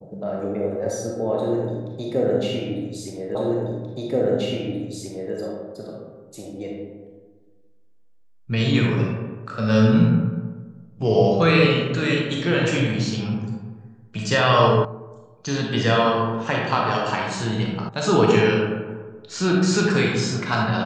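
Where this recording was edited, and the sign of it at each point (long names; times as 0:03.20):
0:03.35: the same again, the last 1.98 s
0:14.85: cut off before it has died away
0:17.89: cut off before it has died away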